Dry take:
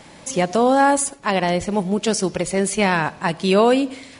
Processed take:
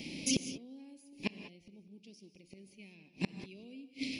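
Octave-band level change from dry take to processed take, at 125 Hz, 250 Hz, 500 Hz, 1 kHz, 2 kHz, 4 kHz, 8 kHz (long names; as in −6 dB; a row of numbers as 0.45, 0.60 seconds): −20.0, −19.5, −31.5, −39.0, −22.5, −14.0, −15.5 decibels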